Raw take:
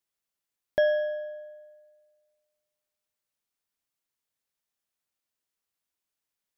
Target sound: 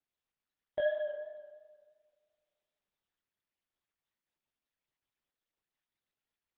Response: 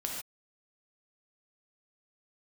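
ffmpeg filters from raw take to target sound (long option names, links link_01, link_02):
-af "flanger=delay=16.5:depth=5.1:speed=2.9,volume=-5.5dB" -ar 48000 -c:a libopus -b:a 8k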